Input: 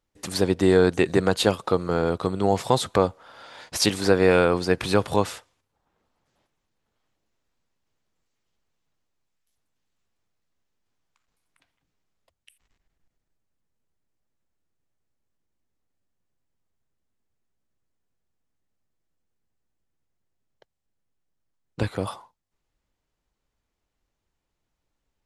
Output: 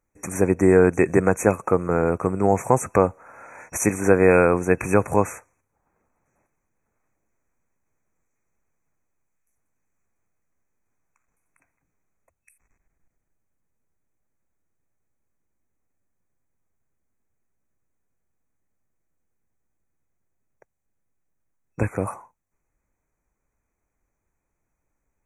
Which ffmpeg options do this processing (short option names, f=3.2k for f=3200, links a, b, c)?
-af "afftfilt=real='re*(1-between(b*sr/4096,2600,5700))':imag='im*(1-between(b*sr/4096,2600,5700))':win_size=4096:overlap=0.75,volume=2.5dB"